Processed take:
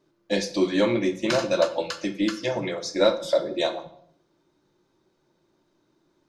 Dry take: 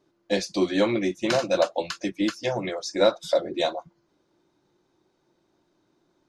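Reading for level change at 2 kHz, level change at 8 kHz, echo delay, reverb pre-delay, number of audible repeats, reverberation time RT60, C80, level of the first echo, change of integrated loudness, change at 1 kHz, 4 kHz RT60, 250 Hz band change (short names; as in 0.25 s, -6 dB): +0.5 dB, +0.5 dB, none, 5 ms, none, 0.65 s, 16.0 dB, none, +0.5 dB, -1.0 dB, 0.55 s, +1.0 dB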